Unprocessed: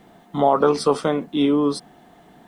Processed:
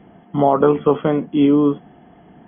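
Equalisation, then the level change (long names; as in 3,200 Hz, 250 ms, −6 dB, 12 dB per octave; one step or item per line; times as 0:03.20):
high-pass filter 44 Hz
linear-phase brick-wall low-pass 3,400 Hz
low-shelf EQ 430 Hz +8.5 dB
−1.0 dB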